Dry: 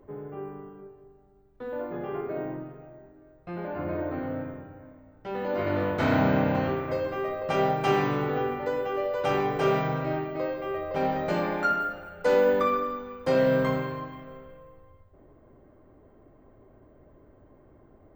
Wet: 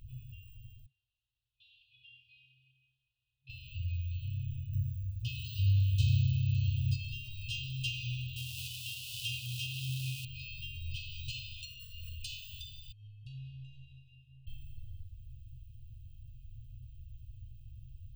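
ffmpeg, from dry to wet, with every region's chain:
ffmpeg -i in.wav -filter_complex "[0:a]asettb=1/sr,asplit=3[link_01][link_02][link_03];[link_01]atrim=end=0.864[link_04];[link_02]atrim=start=0.86:end=3.5,asetpts=PTS-STARTPTS,afade=type=in:duration=0.004:curve=qsin,afade=type=out:start_time=2.636:duration=0.004:curve=qsin,aderivative,aphaser=in_gain=1:out_gain=1:delay=3.9:decay=0.35:speed=1.6:type=triangular,lowpass=frequency=3600:width=0.5412,lowpass=frequency=3600:width=1.3066[link_05];[link_03]atrim=start=3.496[link_06];[link_04][link_05]acrossfade=duration=0.004:curve1=hsin:curve2=qsin[link_07];[link_07][link_06]acrossfade=duration=0.004:curve1=qsin:curve2=hsin,asettb=1/sr,asplit=3[link_08][link_09][link_10];[link_08]atrim=end=4.734[link_11];[link_09]atrim=start=4.73:end=6.96,asetpts=PTS-STARTPTS,afade=type=in:duration=0.004:curve=qsin,afade=type=out:start_time=2.226:duration=0.004:curve=qsin,highpass=84,bass=frequency=250:gain=14,treble=frequency=4000:gain=10[link_12];[link_10]atrim=start=6.956[link_13];[link_11][link_12]acrossfade=duration=0.004:curve1=hsin:curve2=qsin[link_14];[link_14][link_13]acrossfade=duration=0.004:curve1=qsin:curve2=hsin,asettb=1/sr,asplit=3[link_15][link_16][link_17];[link_15]atrim=end=8.364[link_18];[link_16]atrim=start=8.36:end=10.25,asetpts=PTS-STARTPTS,afade=type=in:duration=0.004:curve=qsin,afade=type=out:start_time=1.886:duration=0.004:curve=qsin,aeval=exprs='val(0)+0.5*0.02*sgn(val(0))':channel_layout=same,highpass=110[link_19];[link_17]atrim=start=10.246[link_20];[link_18][link_19]acrossfade=duration=0.004:curve1=hsin:curve2=qsin[link_21];[link_21][link_20]acrossfade=duration=0.004:curve1=qsin:curve2=hsin,asettb=1/sr,asplit=3[link_22][link_23][link_24];[link_22]atrim=end=12.924[link_25];[link_23]atrim=start=12.92:end=14.47,asetpts=PTS-STARTPTS,afade=type=in:duration=0.004:curve=qsin,afade=type=out:start_time=1.546:duration=0.004:curve=qsin,bandpass=frequency=1400:width_type=q:width=3.4,afreqshift=-390,acompressor=threshold=-47dB:ratio=4:attack=3.2:release=140:knee=1:detection=peak[link_26];[link_24]atrim=start=14.466[link_27];[link_25][link_26]acrossfade=duration=0.004:curve1=hsin:curve2=qsin[link_28];[link_28][link_27]acrossfade=duration=0.004:curve1=qsin:curve2=hsin,equalizer=frequency=630:width_type=o:width=0.67:gain=-9,equalizer=frequency=1600:width_type=o:width=0.67:gain=4,equalizer=frequency=6300:width_type=o:width=0.67:gain=-4,acompressor=threshold=-35dB:ratio=4,afftfilt=real='re*(1-between(b*sr/4096,130,2500))':imag='im*(1-between(b*sr/4096,130,2500))':win_size=4096:overlap=0.75,volume=11.5dB" out.wav

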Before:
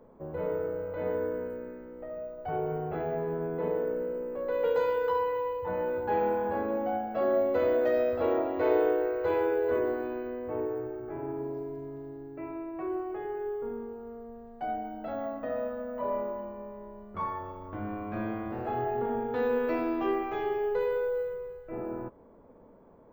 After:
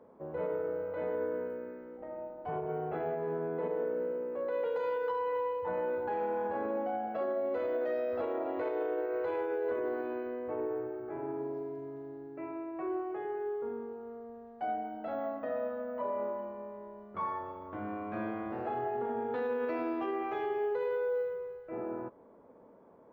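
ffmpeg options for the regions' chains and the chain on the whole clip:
ffmpeg -i in.wav -filter_complex "[0:a]asettb=1/sr,asplit=3[link_01][link_02][link_03];[link_01]atrim=end=1.974[link_04];[link_02]atrim=start=1.97:end=2.69,asetpts=PTS-STARTPTS,afade=type=in:duration=0.004:curve=qsin,afade=type=out:start_time=0.716:duration=0.004:curve=qsin,lowshelf=frequency=170:gain=8.5,tremolo=f=290:d=0.667[link_05];[link_03]atrim=start=2.686[link_06];[link_04][link_05]acrossfade=duration=0.004:curve1=hsin:curve2=qsin[link_07];[link_07][link_06]acrossfade=duration=0.004:curve1=qsin:curve2=hsin,highpass=frequency=270:poles=1,highshelf=frequency=5100:gain=-10.5,alimiter=level_in=2dB:limit=-24dB:level=0:latency=1:release=86,volume=-2dB" out.wav

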